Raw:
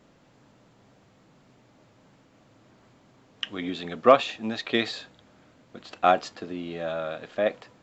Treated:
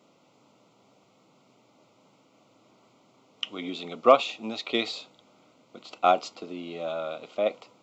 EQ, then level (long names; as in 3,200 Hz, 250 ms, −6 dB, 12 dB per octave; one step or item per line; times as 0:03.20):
high-pass filter 130 Hz 12 dB per octave
Butterworth band-reject 1,700 Hz, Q 2.6
low-shelf EQ 190 Hz −9.5 dB
0.0 dB